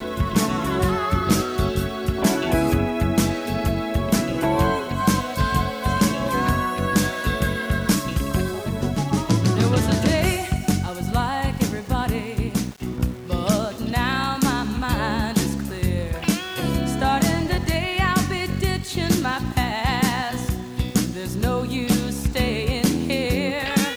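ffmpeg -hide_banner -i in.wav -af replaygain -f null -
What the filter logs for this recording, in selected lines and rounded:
track_gain = +3.4 dB
track_peak = 0.296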